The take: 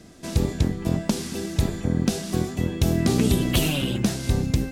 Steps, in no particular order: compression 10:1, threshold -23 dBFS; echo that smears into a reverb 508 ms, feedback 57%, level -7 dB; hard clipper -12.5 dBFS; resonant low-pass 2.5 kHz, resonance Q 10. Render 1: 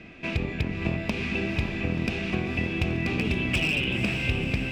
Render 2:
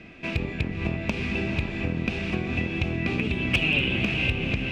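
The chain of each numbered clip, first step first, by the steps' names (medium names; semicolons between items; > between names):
resonant low-pass > hard clipper > compression > echo that smears into a reverb; echo that smears into a reverb > compression > resonant low-pass > hard clipper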